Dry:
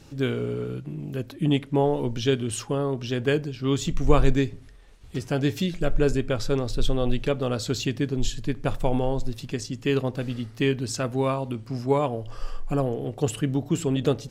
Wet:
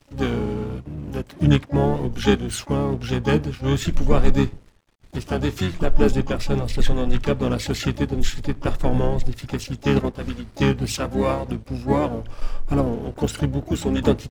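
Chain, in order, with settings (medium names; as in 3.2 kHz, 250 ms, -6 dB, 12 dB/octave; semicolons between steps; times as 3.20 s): crossover distortion -47 dBFS; harmony voices -12 st -2 dB, -5 st -8 dB, +12 st -14 dB; random flutter of the level, depth 55%; trim +3.5 dB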